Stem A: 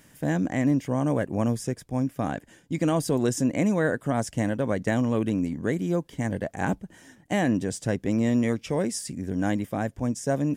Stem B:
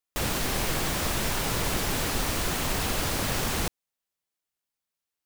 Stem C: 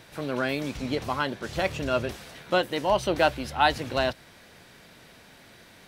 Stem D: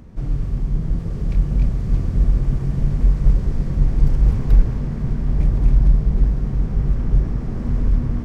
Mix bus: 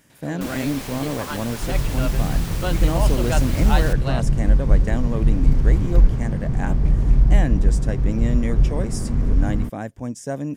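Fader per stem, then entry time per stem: −2.0, −6.0, −4.5, −0.5 decibels; 0.00, 0.25, 0.10, 1.45 seconds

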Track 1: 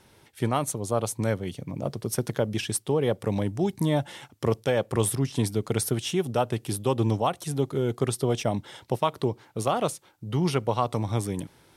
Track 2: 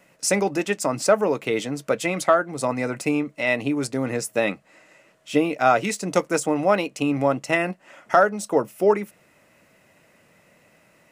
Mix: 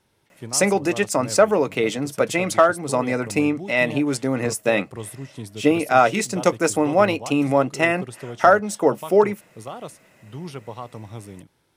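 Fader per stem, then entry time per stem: −9.5, +2.5 decibels; 0.00, 0.30 seconds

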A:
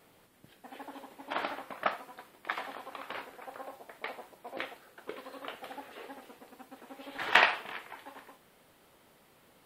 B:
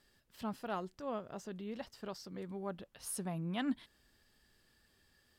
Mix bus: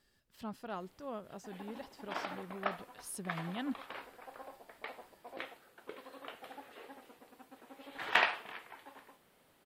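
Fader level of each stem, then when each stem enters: −5.5, −3.0 decibels; 0.80, 0.00 seconds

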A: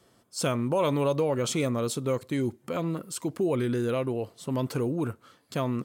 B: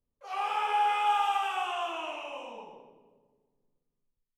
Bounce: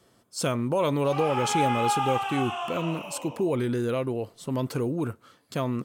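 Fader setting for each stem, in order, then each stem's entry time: +0.5, +0.5 decibels; 0.00, 0.80 seconds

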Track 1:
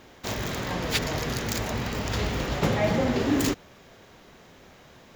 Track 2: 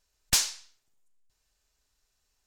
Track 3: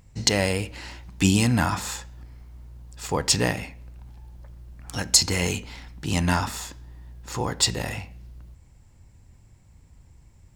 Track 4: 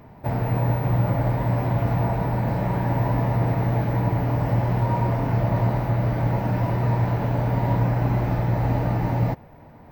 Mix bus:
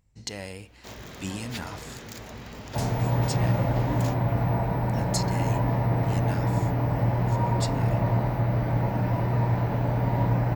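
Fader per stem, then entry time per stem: −11.5, −17.5, −14.5, −2.5 decibels; 0.60, 2.45, 0.00, 2.50 seconds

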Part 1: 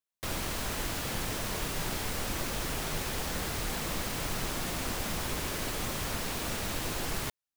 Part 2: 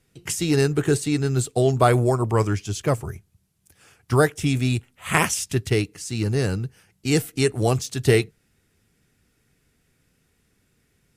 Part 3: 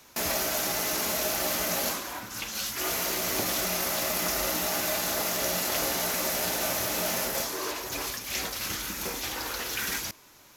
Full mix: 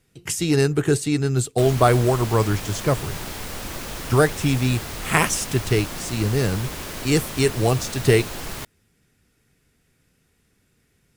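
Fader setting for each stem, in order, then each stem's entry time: +1.5 dB, +1.0 dB, muted; 1.35 s, 0.00 s, muted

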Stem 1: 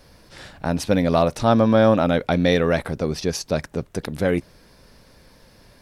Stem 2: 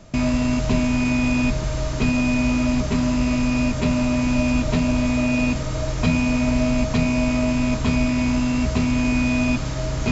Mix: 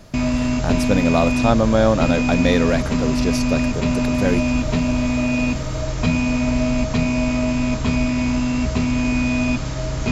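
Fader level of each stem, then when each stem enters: −0.5, +0.5 decibels; 0.00, 0.00 seconds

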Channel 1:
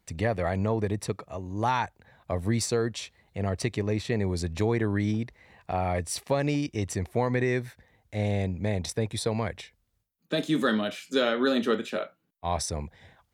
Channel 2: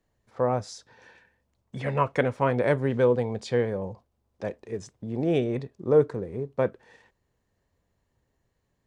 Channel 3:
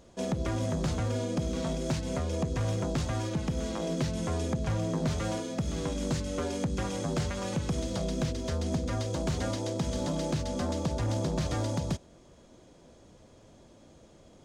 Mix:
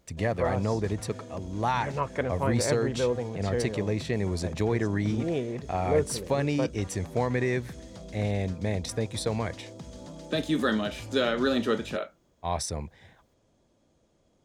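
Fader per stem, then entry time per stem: −1.0, −5.5, −12.0 decibels; 0.00, 0.00, 0.00 seconds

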